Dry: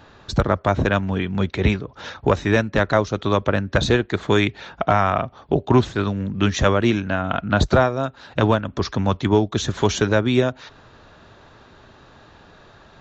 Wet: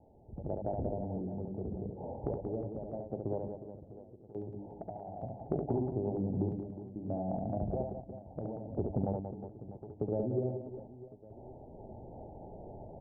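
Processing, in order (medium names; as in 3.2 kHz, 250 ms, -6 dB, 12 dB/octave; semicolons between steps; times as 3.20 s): steep low-pass 850 Hz 96 dB/octave; hum notches 50/100/150/200/250/300 Hz; compression 6:1, threshold -32 dBFS, peak gain reduction 19.5 dB; random-step tremolo 2.3 Hz, depth 95%; reverse bouncing-ball echo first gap 70 ms, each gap 1.6×, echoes 5; trim +1.5 dB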